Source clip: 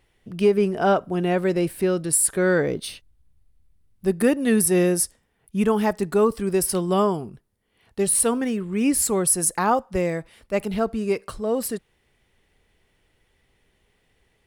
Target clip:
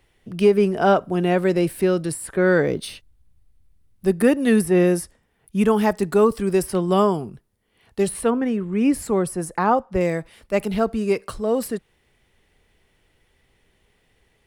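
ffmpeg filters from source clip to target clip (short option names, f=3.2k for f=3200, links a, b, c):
-filter_complex "[0:a]asettb=1/sr,asplit=3[a][b][c];[a]atrim=end=8.304[d];[b]atrim=start=8.3:end=10.01,asetpts=PTS-STARTPTS,afade=t=in:d=0.004:c=qsin,afade=t=out:st=1.706:d=0.004:c=qsin,highshelf=f=3.3k:g=-11.5[e];[c]atrim=start=10.006[f];[d][e]acrossfade=d=0.004:c1=hsin:c2=qsin[g];[g][f]acrossfade=d=0.004:c1=qsin:c2=hsin,acrossover=split=140|2900[h][i][j];[j]acompressor=threshold=-35dB:ratio=6[k];[h][i][k]amix=inputs=3:normalize=0,volume=2.5dB"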